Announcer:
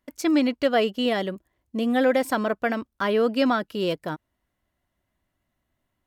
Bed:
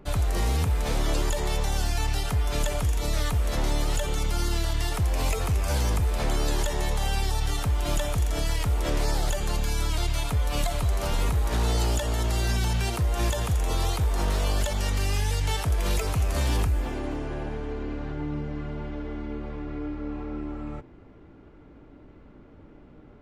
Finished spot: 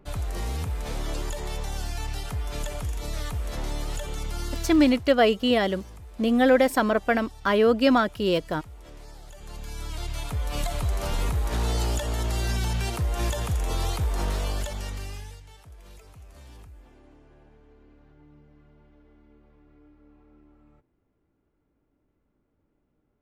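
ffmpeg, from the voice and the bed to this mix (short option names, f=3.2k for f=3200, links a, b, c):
-filter_complex "[0:a]adelay=4450,volume=2dB[a];[1:a]volume=13dB,afade=t=out:st=4.65:d=0.43:silence=0.188365,afade=t=in:st=9.29:d=1.5:silence=0.11885,afade=t=out:st=14.22:d=1.22:silence=0.0841395[b];[a][b]amix=inputs=2:normalize=0"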